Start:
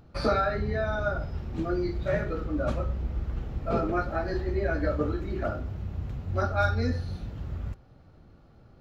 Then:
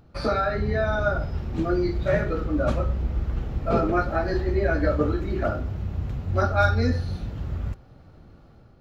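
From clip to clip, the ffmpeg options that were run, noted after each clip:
ffmpeg -i in.wav -af "dynaudnorm=framelen=340:gausssize=3:maxgain=5dB" out.wav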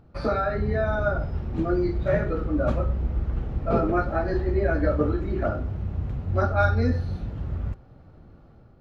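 ffmpeg -i in.wav -af "highshelf=frequency=2800:gain=-10.5" out.wav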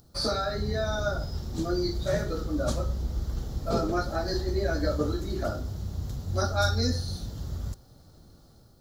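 ffmpeg -i in.wav -af "aexciter=amount=10.7:drive=8.5:freq=3900,volume=-4.5dB" out.wav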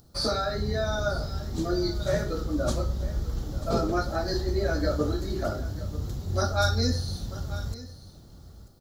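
ffmpeg -i in.wav -af "aecho=1:1:940:0.158,volume=1dB" out.wav

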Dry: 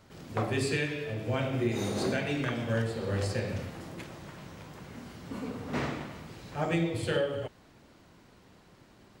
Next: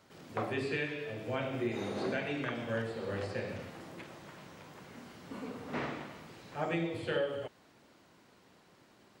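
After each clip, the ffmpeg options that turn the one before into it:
ffmpeg -i in.wav -filter_complex "[0:a]highpass=frequency=250:poles=1,acrossover=split=3700[link_01][link_02];[link_02]acompressor=threshold=-58dB:ratio=4:attack=1:release=60[link_03];[link_01][link_03]amix=inputs=2:normalize=0,volume=-2.5dB" out.wav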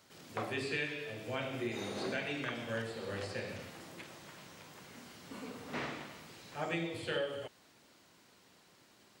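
ffmpeg -i in.wav -af "highshelf=frequency=2500:gain=10,volume=-4dB" out.wav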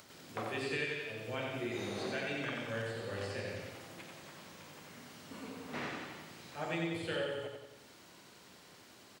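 ffmpeg -i in.wav -af "acompressor=mode=upward:threshold=-49dB:ratio=2.5,aecho=1:1:90|180|270|360|450|540|630:0.596|0.322|0.174|0.0938|0.0506|0.0274|0.0148,volume=-2dB" out.wav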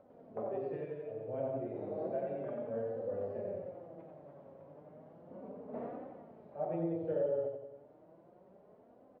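ffmpeg -i in.wav -af "flanger=delay=3.8:depth=3.7:regen=35:speed=0.33:shape=triangular,lowpass=frequency=610:width_type=q:width=3.4" out.wav

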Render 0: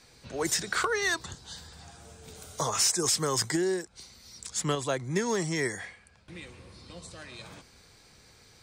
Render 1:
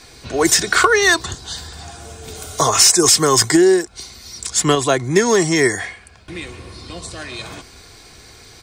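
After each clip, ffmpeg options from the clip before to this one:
ffmpeg -i in.wav -af "aecho=1:1:2.8:0.39,acontrast=71,volume=7dB" out.wav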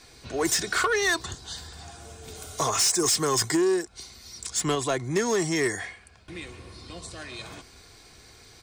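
ffmpeg -i in.wav -af "asoftclip=type=tanh:threshold=-8.5dB,volume=-8.5dB" out.wav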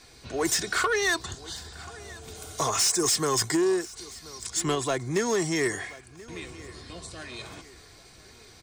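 ffmpeg -i in.wav -af "aecho=1:1:1031|2062|3093:0.0944|0.0406|0.0175,volume=-1dB" out.wav

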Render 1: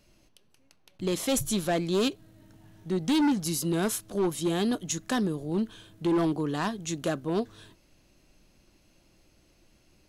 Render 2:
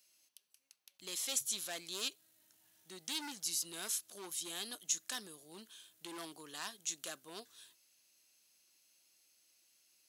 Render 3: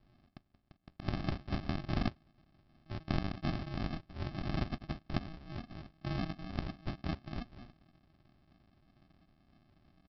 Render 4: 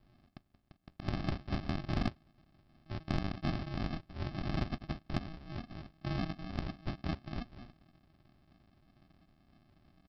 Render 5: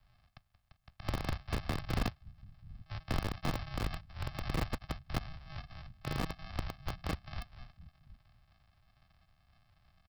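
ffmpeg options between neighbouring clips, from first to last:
ffmpeg -i in.wav -filter_complex "[0:a]acrossover=split=7700[link_01][link_02];[link_02]acompressor=threshold=-46dB:ratio=4:attack=1:release=60[link_03];[link_01][link_03]amix=inputs=2:normalize=0,aderivative,volume=1dB" out.wav
ffmpeg -i in.wav -af "alimiter=level_in=3dB:limit=-24dB:level=0:latency=1:release=198,volume=-3dB,aresample=11025,acrusher=samples=23:mix=1:aa=0.000001,aresample=44100,volume=11dB" out.wav
ffmpeg -i in.wav -af "asoftclip=type=tanh:threshold=-20dB,volume=1dB" out.wav
ffmpeg -i in.wav -filter_complex "[0:a]acrossover=split=140|650[link_01][link_02][link_03];[link_01]aecho=1:1:734:0.2[link_04];[link_02]acrusher=bits=3:dc=4:mix=0:aa=0.000001[link_05];[link_04][link_05][link_03]amix=inputs=3:normalize=0,volume=1.5dB" out.wav

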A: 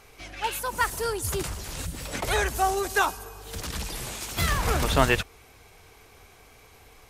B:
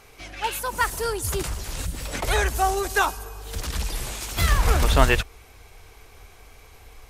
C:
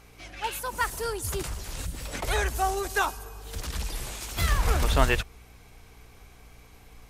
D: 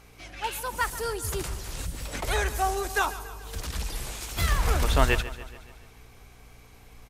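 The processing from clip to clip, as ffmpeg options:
ffmpeg -i in.wav -af "asubboost=boost=3:cutoff=77,volume=2dB" out.wav
ffmpeg -i in.wav -af "aeval=exprs='val(0)+0.00316*(sin(2*PI*60*n/s)+sin(2*PI*2*60*n/s)/2+sin(2*PI*3*60*n/s)/3+sin(2*PI*4*60*n/s)/4+sin(2*PI*5*60*n/s)/5)':channel_layout=same,volume=-4.5dB" out.wav
ffmpeg -i in.wav -af "aecho=1:1:142|284|426|568|710|852:0.168|0.0957|0.0545|0.0311|0.0177|0.0101" out.wav

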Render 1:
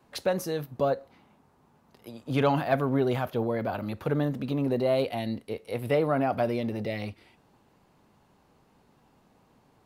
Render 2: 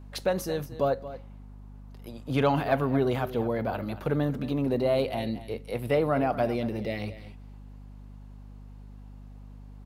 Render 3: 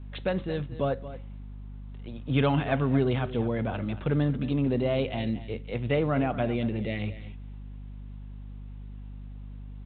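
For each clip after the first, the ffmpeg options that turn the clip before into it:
ffmpeg -i in.wav -af "aecho=1:1:228:0.188,aeval=exprs='val(0)+0.00631*(sin(2*PI*50*n/s)+sin(2*PI*2*50*n/s)/2+sin(2*PI*3*50*n/s)/3+sin(2*PI*4*50*n/s)/4+sin(2*PI*5*50*n/s)/5)':channel_layout=same" out.wav
ffmpeg -i in.wav -af "equalizer=frequency=760:width_type=o:width=2.6:gain=-9,volume=5dB" -ar 8000 -c:a pcm_alaw out.wav

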